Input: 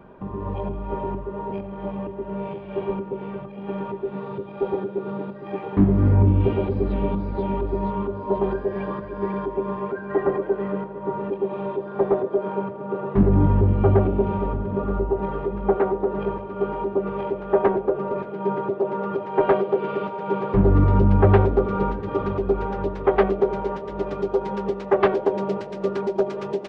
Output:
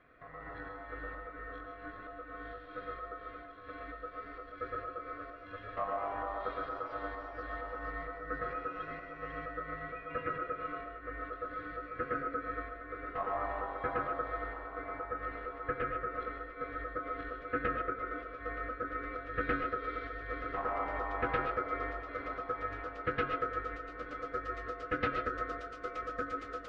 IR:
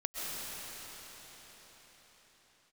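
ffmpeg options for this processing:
-filter_complex "[0:a]highpass=f=420:p=1,aeval=exprs='val(0)*sin(2*PI*890*n/s)':c=same[s0];[1:a]atrim=start_sample=2205,atrim=end_sample=6615[s1];[s0][s1]afir=irnorm=-1:irlink=0,volume=0.398"

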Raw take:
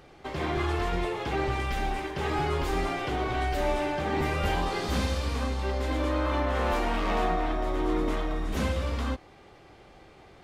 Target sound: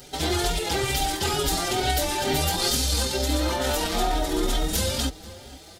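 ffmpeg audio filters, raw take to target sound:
-filter_complex "[0:a]aexciter=amount=3.7:drive=6.7:freq=3300,atempo=1.8,asplit=2[s0][s1];[s1]adelay=478.1,volume=0.112,highshelf=f=4000:g=-10.8[s2];[s0][s2]amix=inputs=2:normalize=0,alimiter=limit=0.106:level=0:latency=1:release=98,asuperstop=centerf=1100:order=8:qfactor=7.2,highshelf=f=5000:g=6,asplit=2[s3][s4];[s4]adelay=5.1,afreqshift=2.2[s5];[s3][s5]amix=inputs=2:normalize=1,volume=2.37"

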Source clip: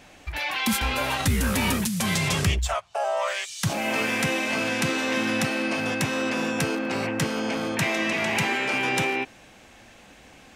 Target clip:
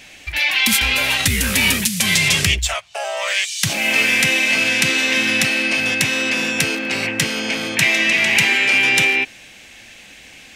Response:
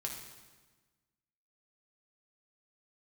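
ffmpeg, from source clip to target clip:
-af "highshelf=f=1600:t=q:w=1.5:g=9,volume=1.19"

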